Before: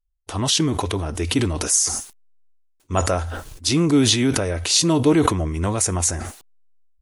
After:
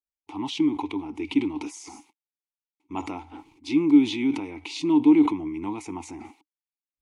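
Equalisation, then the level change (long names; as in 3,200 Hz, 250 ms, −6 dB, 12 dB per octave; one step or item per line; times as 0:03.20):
formant filter u
low-shelf EQ 450 Hz −3.5 dB
dynamic equaliser 3,400 Hz, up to +4 dB, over −58 dBFS, Q 2.2
+6.0 dB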